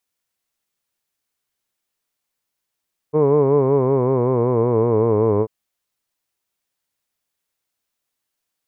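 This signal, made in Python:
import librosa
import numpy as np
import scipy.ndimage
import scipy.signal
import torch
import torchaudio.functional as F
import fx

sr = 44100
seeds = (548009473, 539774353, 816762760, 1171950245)

y = fx.vowel(sr, seeds[0], length_s=2.34, word='hood', hz=148.0, glide_st=-6.0, vibrato_hz=5.3, vibrato_st=0.9)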